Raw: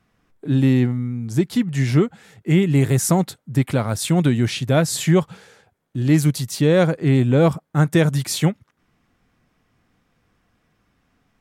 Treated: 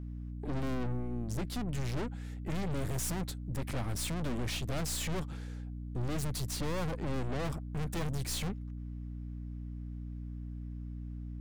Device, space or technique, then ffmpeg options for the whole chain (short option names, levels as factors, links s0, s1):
valve amplifier with mains hum: -af "aeval=exprs='(tanh(35.5*val(0)+0.8)-tanh(0.8))/35.5':c=same,aeval=exprs='val(0)+0.0158*(sin(2*PI*60*n/s)+sin(2*PI*2*60*n/s)/2+sin(2*PI*3*60*n/s)/3+sin(2*PI*4*60*n/s)/4+sin(2*PI*5*60*n/s)/5)':c=same,volume=0.668"